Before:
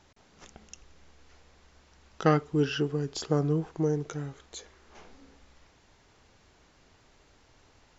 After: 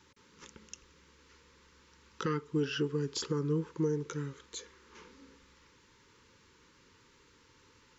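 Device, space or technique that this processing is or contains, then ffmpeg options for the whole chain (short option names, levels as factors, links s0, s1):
PA system with an anti-feedback notch: -af "highpass=f=120:p=1,asuperstop=centerf=690:order=20:qfactor=2.2,alimiter=limit=0.075:level=0:latency=1:release=336"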